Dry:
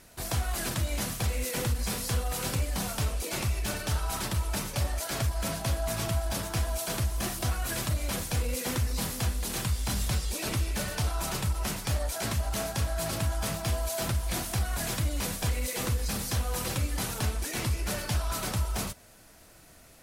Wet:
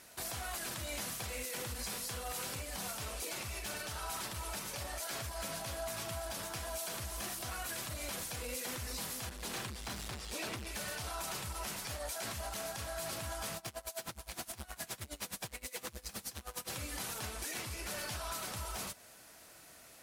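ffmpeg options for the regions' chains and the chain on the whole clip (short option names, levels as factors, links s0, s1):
-filter_complex "[0:a]asettb=1/sr,asplit=3[s0][s1][s2];[s0]atrim=end=9.294[s3];[s1]atrim=start=9.29:end=10.67,asetpts=PTS-STARTPTS,afade=t=in:d=0.004:c=qsin,afade=t=out:st=1.376:d=0.004:c=qsin,highpass=40,highshelf=f=5400:g=-10,asoftclip=type=hard:threshold=0.0316[s4];[s2]atrim=start=10.666[s5];[s3][s4]acrossfade=d=0.004:c1=hsin:c2=qsin[s6];[s6][s5]acrossfade=d=0.004:c1=qsin:c2=hsin,asettb=1/sr,asplit=3[s7][s8][s9];[s7]atrim=end=13.574[s10];[s8]atrim=start=13.57:end=16.7,asetpts=PTS-STARTPTS,afade=t=in:d=0.004:c=qsin,afade=t=out:st=3.126:d=0.004:c=qsin,asoftclip=type=hard:threshold=0.0398,aeval=exprs='val(0)*pow(10,-23*(0.5-0.5*cos(2*PI*9.6*n/s))/20)':c=same[s11];[s9]atrim=start=16.696[s12];[s10][s11]acrossfade=d=0.004:c1=hsin:c2=qsin[s13];[s13][s12]acrossfade=d=0.004:c1=qsin:c2=hsin,highpass=f=94:p=1,lowshelf=f=380:g=-8.5,alimiter=level_in=2.11:limit=0.0631:level=0:latency=1:release=152,volume=0.473"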